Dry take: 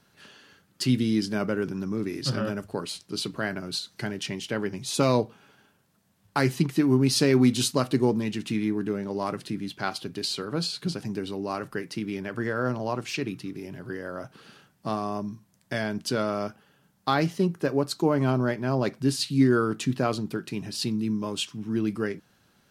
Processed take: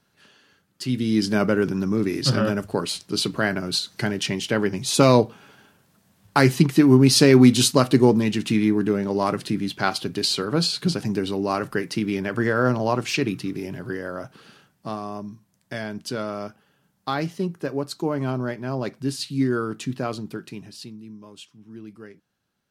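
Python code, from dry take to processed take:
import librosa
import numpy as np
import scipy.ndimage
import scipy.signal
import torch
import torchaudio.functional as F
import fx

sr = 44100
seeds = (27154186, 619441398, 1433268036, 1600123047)

y = fx.gain(x, sr, db=fx.line((0.82, -4.0), (1.29, 7.0), (13.63, 7.0), (14.99, -2.0), (20.45, -2.0), (21.0, -13.5)))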